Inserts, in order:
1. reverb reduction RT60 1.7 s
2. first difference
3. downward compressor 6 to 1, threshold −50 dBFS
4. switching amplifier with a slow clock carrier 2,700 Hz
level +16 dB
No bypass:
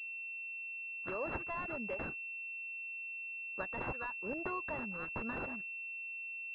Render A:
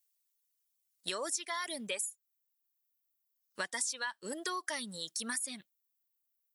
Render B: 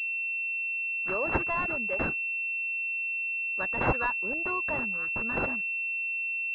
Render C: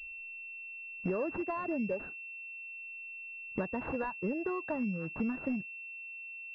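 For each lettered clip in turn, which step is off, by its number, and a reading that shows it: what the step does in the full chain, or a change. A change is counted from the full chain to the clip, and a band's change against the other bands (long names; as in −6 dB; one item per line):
4, 125 Hz band −7.5 dB
3, average gain reduction 7.0 dB
2, 2 kHz band −8.0 dB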